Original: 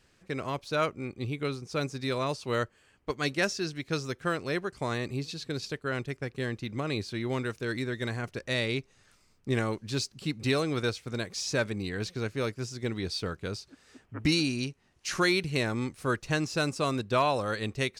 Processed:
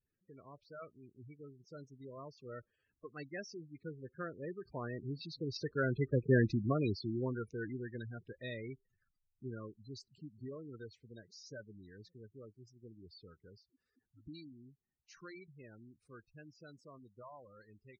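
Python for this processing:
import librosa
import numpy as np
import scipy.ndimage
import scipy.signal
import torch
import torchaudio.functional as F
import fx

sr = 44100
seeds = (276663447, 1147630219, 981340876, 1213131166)

y = fx.doppler_pass(x, sr, speed_mps=5, closest_m=1.3, pass_at_s=6.32)
y = fx.spec_gate(y, sr, threshold_db=-10, keep='strong')
y = y * librosa.db_to_amplitude(6.5)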